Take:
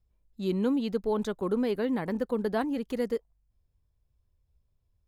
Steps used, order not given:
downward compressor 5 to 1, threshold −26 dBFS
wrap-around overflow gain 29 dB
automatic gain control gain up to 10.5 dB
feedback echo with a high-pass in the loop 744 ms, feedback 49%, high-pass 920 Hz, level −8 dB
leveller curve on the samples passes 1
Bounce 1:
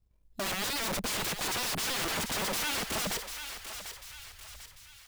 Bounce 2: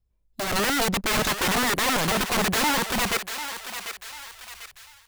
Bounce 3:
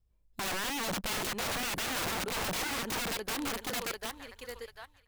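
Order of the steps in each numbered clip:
downward compressor, then automatic gain control, then wrap-around overflow, then leveller curve on the samples, then feedback echo with a high-pass in the loop
leveller curve on the samples, then downward compressor, then wrap-around overflow, then feedback echo with a high-pass in the loop, then automatic gain control
feedback echo with a high-pass in the loop, then automatic gain control, then downward compressor, then leveller curve on the samples, then wrap-around overflow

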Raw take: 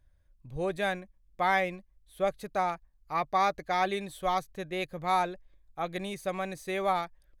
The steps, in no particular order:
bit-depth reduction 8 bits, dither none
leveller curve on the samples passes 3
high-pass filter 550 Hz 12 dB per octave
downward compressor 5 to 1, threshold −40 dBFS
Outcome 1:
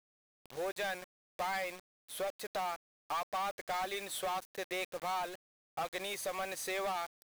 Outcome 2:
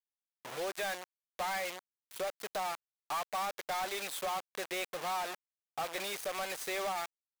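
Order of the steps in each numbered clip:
downward compressor, then high-pass filter, then leveller curve on the samples, then bit-depth reduction
downward compressor, then bit-depth reduction, then high-pass filter, then leveller curve on the samples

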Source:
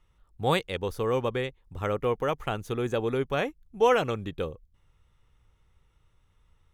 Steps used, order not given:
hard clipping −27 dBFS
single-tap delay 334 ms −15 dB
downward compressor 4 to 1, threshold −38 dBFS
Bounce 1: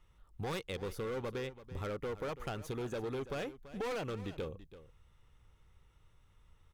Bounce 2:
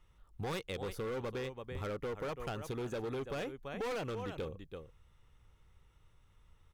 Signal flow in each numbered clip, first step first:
hard clipping, then downward compressor, then single-tap delay
single-tap delay, then hard clipping, then downward compressor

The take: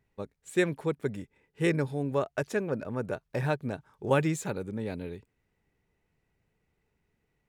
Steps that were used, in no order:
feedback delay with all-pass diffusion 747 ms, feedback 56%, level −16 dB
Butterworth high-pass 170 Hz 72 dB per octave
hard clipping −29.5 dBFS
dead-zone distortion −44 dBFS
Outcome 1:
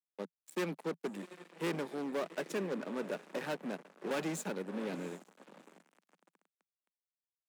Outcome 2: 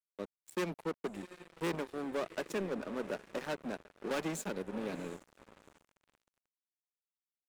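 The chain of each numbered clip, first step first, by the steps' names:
feedback delay with all-pass diffusion, then hard clipping, then dead-zone distortion, then Butterworth high-pass
feedback delay with all-pass diffusion, then hard clipping, then Butterworth high-pass, then dead-zone distortion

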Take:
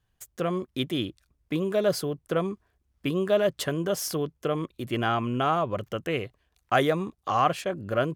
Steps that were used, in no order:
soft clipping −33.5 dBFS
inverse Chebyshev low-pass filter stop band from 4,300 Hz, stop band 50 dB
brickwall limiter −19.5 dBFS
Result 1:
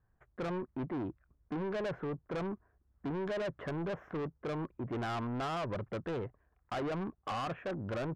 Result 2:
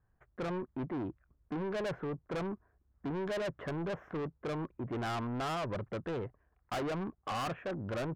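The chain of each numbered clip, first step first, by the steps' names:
inverse Chebyshev low-pass filter, then brickwall limiter, then soft clipping
inverse Chebyshev low-pass filter, then soft clipping, then brickwall limiter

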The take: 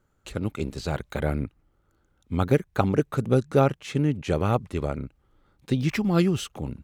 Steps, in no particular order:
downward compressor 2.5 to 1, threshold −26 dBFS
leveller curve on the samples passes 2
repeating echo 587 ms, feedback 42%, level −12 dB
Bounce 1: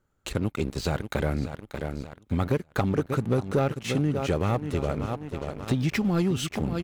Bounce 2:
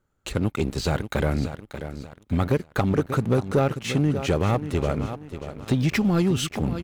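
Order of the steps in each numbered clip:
repeating echo, then leveller curve on the samples, then downward compressor
downward compressor, then repeating echo, then leveller curve on the samples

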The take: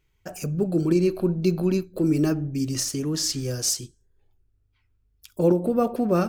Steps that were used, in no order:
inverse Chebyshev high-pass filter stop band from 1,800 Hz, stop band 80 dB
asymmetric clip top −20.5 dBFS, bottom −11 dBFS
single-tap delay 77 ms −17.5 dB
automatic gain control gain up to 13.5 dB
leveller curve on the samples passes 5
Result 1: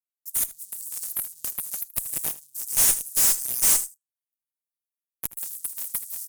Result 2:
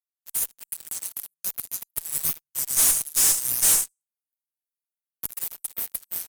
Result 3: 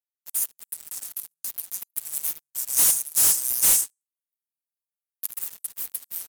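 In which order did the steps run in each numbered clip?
leveller curve on the samples, then inverse Chebyshev high-pass filter, then automatic gain control, then asymmetric clip, then single-tap delay
single-tap delay, then automatic gain control, then inverse Chebyshev high-pass filter, then leveller curve on the samples, then asymmetric clip
automatic gain control, then single-tap delay, then asymmetric clip, then inverse Chebyshev high-pass filter, then leveller curve on the samples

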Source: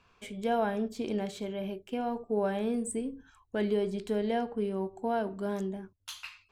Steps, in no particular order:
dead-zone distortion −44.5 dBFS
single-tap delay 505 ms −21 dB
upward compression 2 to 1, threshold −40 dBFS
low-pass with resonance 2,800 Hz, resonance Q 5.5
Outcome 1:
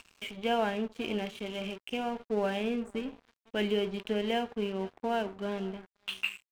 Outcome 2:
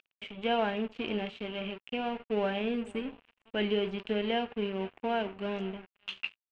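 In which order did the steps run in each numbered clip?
single-tap delay, then upward compression, then low-pass with resonance, then dead-zone distortion
single-tap delay, then upward compression, then dead-zone distortion, then low-pass with resonance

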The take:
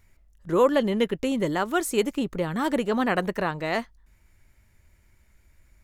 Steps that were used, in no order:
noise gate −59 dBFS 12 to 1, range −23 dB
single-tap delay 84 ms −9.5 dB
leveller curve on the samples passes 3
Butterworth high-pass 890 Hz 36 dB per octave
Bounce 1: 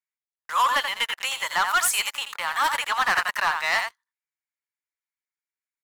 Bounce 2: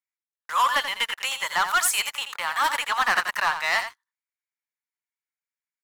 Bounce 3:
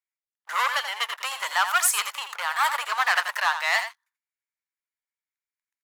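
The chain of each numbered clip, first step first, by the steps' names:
Butterworth high-pass, then noise gate, then single-tap delay, then leveller curve on the samples
Butterworth high-pass, then noise gate, then leveller curve on the samples, then single-tap delay
leveller curve on the samples, then Butterworth high-pass, then noise gate, then single-tap delay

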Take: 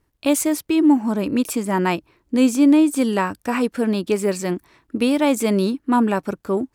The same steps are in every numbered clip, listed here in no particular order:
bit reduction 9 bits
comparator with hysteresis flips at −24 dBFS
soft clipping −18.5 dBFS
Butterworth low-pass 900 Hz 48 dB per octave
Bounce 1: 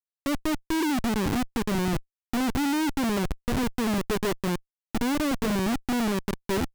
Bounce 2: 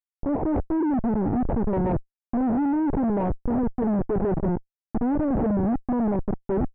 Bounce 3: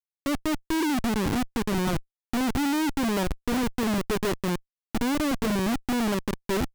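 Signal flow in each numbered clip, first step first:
bit reduction, then soft clipping, then Butterworth low-pass, then comparator with hysteresis
bit reduction, then comparator with hysteresis, then Butterworth low-pass, then soft clipping
Butterworth low-pass, then bit reduction, then soft clipping, then comparator with hysteresis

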